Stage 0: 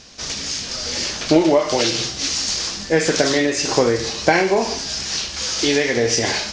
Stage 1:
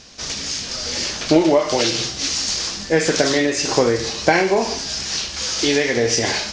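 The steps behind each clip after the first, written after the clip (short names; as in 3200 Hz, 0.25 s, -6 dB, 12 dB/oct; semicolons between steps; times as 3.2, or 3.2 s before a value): nothing audible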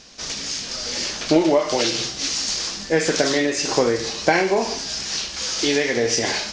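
bell 87 Hz -7.5 dB 0.9 oct; gain -2 dB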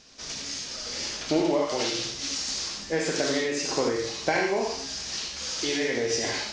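non-linear reverb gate 0.11 s rising, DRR 2.5 dB; gain -8.5 dB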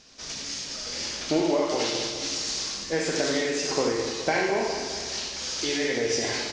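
feedback echo 0.208 s, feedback 54%, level -9 dB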